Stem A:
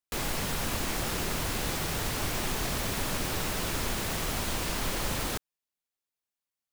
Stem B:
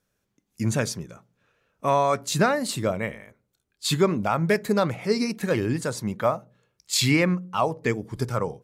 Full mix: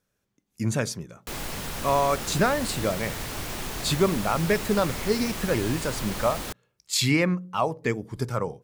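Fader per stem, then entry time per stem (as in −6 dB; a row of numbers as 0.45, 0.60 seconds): −2.0, −1.5 decibels; 1.15, 0.00 seconds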